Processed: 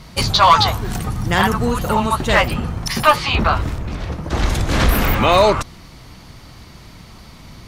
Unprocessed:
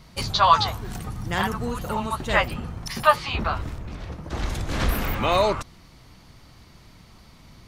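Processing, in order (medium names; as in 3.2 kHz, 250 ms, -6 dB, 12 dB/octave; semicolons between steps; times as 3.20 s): in parallel at +1.5 dB: peak limiter -15 dBFS, peak gain reduction 11.5 dB; on the sum: one-sided clip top -9.5 dBFS; trim +3 dB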